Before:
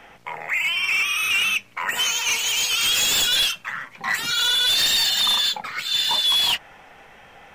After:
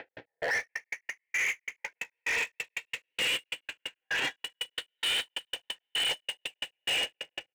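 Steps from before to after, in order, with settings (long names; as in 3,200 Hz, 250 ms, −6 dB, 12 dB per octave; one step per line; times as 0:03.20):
converter with a step at zero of −41.5 dBFS
on a send at −5 dB: convolution reverb RT60 4.9 s, pre-delay 46 ms
on the sum: formants moved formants −3 semitones
repeating echo 219 ms, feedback 58%, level −4 dB
in parallel at +2 dB: downward compressor, threshold −30 dBFS, peak gain reduction 16 dB
on the sum: loudspeaker in its box 150–3,200 Hz, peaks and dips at 170 Hz +7 dB, 290 Hz +4 dB, 500 Hz +6 dB, 720 Hz −4 dB, 1,100 Hz +9 dB, 1,800 Hz +7 dB
brickwall limiter −12.5 dBFS, peak gain reduction 10.5 dB
gate pattern "x.x..xxx.x." 179 BPM −60 dB
phaser with its sweep stopped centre 480 Hz, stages 4
hard clipping −26 dBFS, distortion −9 dB
every ending faded ahead of time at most 550 dB per second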